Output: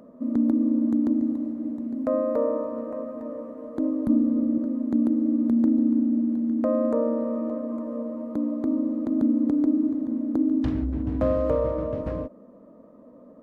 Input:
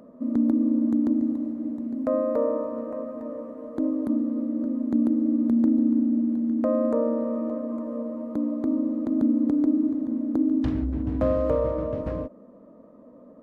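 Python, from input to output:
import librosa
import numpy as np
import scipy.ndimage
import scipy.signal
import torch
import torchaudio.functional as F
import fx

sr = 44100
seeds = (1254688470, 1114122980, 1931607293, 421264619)

y = fx.low_shelf(x, sr, hz=200.0, db=11.0, at=(4.07, 4.58))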